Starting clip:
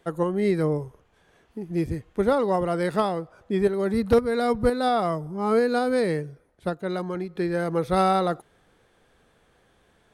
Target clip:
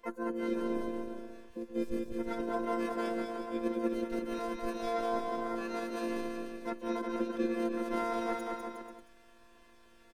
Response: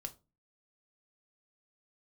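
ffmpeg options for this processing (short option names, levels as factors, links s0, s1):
-filter_complex "[0:a]areverse,acompressor=threshold=0.0282:ratio=8,areverse,aecho=1:1:200|360|488|590.4|672.3:0.631|0.398|0.251|0.158|0.1,afftfilt=real='hypot(re,im)*cos(PI*b)':imag='0':win_size=512:overlap=0.75,asplit=4[s0][s1][s2][s3];[s1]asetrate=29433,aresample=44100,atempo=1.49831,volume=0.631[s4];[s2]asetrate=58866,aresample=44100,atempo=0.749154,volume=0.158[s5];[s3]asetrate=66075,aresample=44100,atempo=0.66742,volume=0.501[s6];[s0][s4][s5][s6]amix=inputs=4:normalize=0"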